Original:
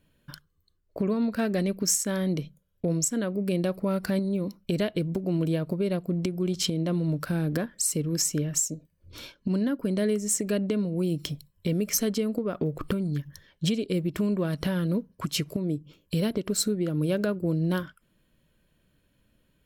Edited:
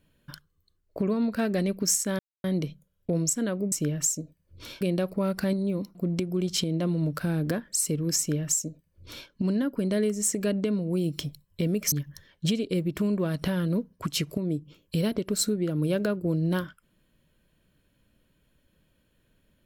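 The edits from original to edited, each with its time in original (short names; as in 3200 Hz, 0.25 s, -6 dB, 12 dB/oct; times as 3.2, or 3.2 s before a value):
2.19 insert silence 0.25 s
4.61–6.01 cut
8.25–9.34 copy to 3.47
11.98–13.11 cut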